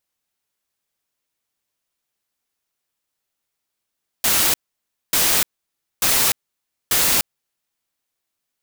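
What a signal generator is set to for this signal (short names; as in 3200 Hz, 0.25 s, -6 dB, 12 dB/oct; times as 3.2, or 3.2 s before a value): noise bursts white, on 0.30 s, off 0.59 s, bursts 4, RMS -17 dBFS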